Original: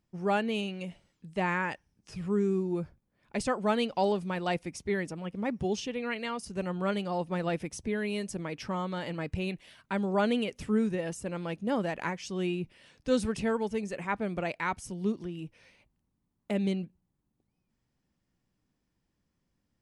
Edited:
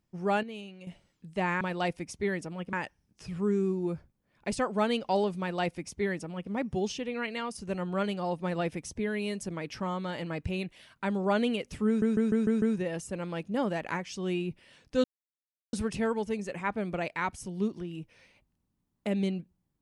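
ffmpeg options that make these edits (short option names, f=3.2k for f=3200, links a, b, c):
-filter_complex "[0:a]asplit=11[a][b][c][d][e][f][g][h][i][j][k];[a]atrim=end=0.432[l];[b]atrim=start=0.428:end=0.872,asetpts=PTS-STARTPTS,volume=-10dB[m];[c]atrim=start=0.868:end=1.612[n];[d]atrim=start=4.268:end=5.392[o];[e]atrim=start=1.608:end=10.902[p];[f]atrim=start=10.748:end=10.902[q];[g]atrim=start=10.748:end=10.902[r];[h]atrim=start=10.748:end=10.902[s];[i]atrim=start=10.748:end=10.902[t];[j]atrim=start=10.748:end=13.17,asetpts=PTS-STARTPTS,afade=t=out:st=2.418:d=0.004:c=hsin,apad=pad_dur=0.69[u];[k]atrim=start=13.17,asetpts=PTS-STARTPTS,afade=t=in:d=0.004:c=hsin[v];[l][m]acrossfade=d=0.004:c1=hsin:c2=hsin[w];[w][n]acrossfade=d=0.004:c1=hsin:c2=hsin[x];[x][o]acrossfade=d=0.004:c1=hsin:c2=hsin[y];[y][p]acrossfade=d=0.004:c1=hsin:c2=hsin[z];[z][q]acrossfade=d=0.004:c1=hsin:c2=hsin[aa];[aa][r]acrossfade=d=0.004:c1=hsin:c2=hsin[ab];[ab][s]acrossfade=d=0.004:c1=hsin:c2=hsin[ac];[ac][t]acrossfade=d=0.004:c1=hsin:c2=hsin[ad];[u][v]concat=n=2:v=0:a=1[ae];[ad][ae]acrossfade=d=0.004:c1=hsin:c2=hsin"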